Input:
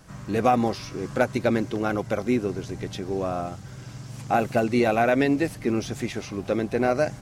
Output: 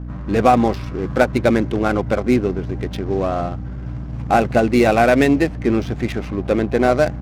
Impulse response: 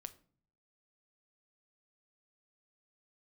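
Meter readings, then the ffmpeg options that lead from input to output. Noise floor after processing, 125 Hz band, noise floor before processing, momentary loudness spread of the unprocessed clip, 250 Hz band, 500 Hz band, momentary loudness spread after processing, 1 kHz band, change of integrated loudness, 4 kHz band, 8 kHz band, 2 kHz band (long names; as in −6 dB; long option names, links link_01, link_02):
−29 dBFS, +8.5 dB, −41 dBFS, 12 LU, +7.0 dB, +7.0 dB, 12 LU, +7.0 dB, +7.0 dB, +5.5 dB, +3.0 dB, +6.5 dB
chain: -af "aeval=exprs='val(0)+0.0178*(sin(2*PI*60*n/s)+sin(2*PI*2*60*n/s)/2+sin(2*PI*3*60*n/s)/3+sin(2*PI*4*60*n/s)/4+sin(2*PI*5*60*n/s)/5)':channel_layout=same,adynamicsmooth=sensitivity=7.5:basefreq=930,volume=7dB"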